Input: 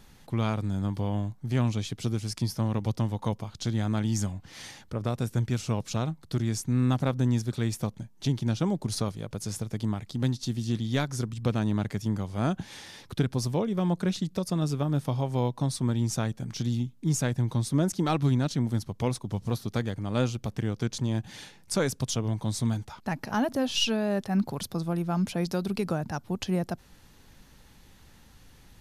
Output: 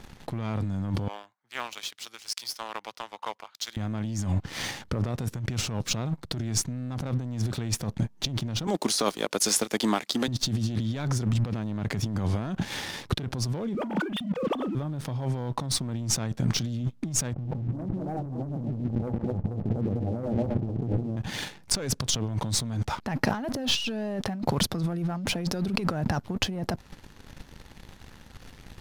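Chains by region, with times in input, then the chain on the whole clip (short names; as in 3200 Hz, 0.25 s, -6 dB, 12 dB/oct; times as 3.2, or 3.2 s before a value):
1.08–3.77 HPF 1300 Hz + compressor 2:1, threshold -44 dBFS + three-band expander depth 100%
8.67–10.28 HPF 230 Hz 24 dB/oct + tilt +2.5 dB/oct
13.75–14.75 sine-wave speech + doubler 39 ms -8 dB
17.33–21.17 regenerating reverse delay 0.116 s, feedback 46%, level -3 dB + Chebyshev low-pass 840 Hz, order 6 + mismatched tape noise reduction decoder only
whole clip: high shelf 6700 Hz -11 dB; sample leveller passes 2; negative-ratio compressor -29 dBFS, ratio -1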